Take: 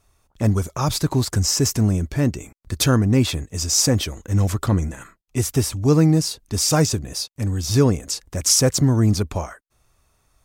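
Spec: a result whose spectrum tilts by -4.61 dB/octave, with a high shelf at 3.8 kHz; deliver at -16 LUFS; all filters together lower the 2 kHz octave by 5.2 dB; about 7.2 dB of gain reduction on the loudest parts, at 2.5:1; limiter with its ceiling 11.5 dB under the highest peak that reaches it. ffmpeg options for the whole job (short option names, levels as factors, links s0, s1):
-af "equalizer=f=2000:t=o:g=-8.5,highshelf=f=3800:g=4.5,acompressor=threshold=0.0794:ratio=2.5,volume=4.22,alimiter=limit=0.447:level=0:latency=1"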